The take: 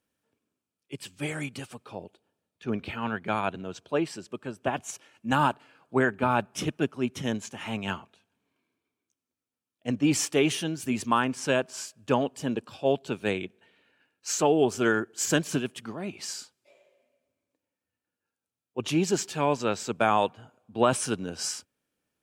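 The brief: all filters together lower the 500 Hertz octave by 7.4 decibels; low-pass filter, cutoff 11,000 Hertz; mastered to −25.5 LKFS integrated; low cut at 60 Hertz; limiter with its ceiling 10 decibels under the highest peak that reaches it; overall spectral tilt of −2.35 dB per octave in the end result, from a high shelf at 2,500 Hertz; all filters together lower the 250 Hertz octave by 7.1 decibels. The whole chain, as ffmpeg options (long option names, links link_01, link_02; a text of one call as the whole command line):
ffmpeg -i in.wav -af "highpass=60,lowpass=11000,equalizer=frequency=250:width_type=o:gain=-6.5,equalizer=frequency=500:width_type=o:gain=-8,highshelf=frequency=2500:gain=7.5,volume=6.5dB,alimiter=limit=-12dB:level=0:latency=1" out.wav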